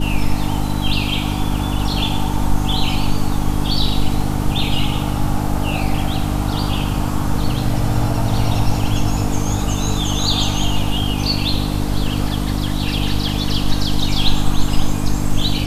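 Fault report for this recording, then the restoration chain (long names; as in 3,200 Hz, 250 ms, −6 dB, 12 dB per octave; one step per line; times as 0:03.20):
mains hum 50 Hz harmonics 6 −21 dBFS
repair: hum removal 50 Hz, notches 6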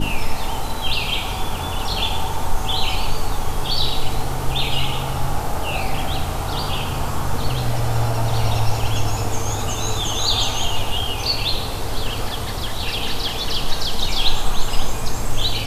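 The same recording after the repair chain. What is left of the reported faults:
none of them is left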